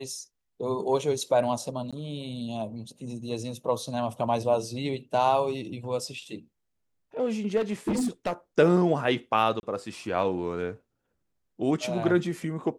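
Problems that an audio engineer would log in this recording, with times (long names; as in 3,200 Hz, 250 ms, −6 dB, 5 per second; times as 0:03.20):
0:01.91–0:01.93: drop-out 16 ms
0:07.56–0:08.33: clipping −22.5 dBFS
0:09.60–0:09.63: drop-out 31 ms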